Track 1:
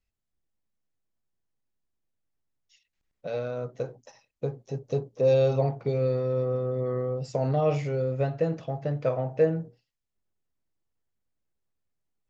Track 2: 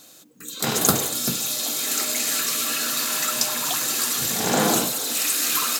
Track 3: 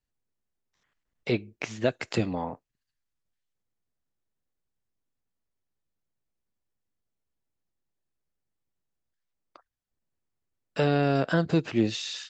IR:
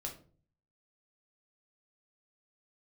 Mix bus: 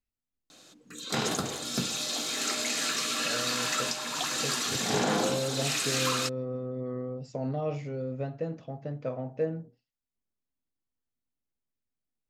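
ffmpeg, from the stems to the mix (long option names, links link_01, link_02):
-filter_complex "[0:a]equalizer=frequency=250:width=3.7:gain=10,volume=-8dB[link_01];[1:a]lowpass=5800,adelay=500,volume=-2.5dB[link_02];[link_01][link_02]amix=inputs=2:normalize=0,alimiter=limit=-16.5dB:level=0:latency=1:release=458"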